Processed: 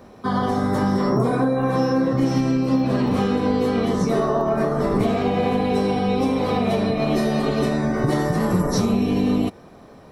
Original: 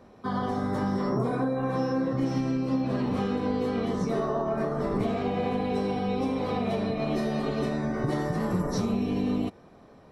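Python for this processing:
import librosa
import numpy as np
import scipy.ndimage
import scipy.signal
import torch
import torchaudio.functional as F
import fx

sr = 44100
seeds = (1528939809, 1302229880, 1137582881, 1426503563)

y = fx.high_shelf(x, sr, hz=8000.0, db=8.5)
y = F.gain(torch.from_numpy(y), 7.5).numpy()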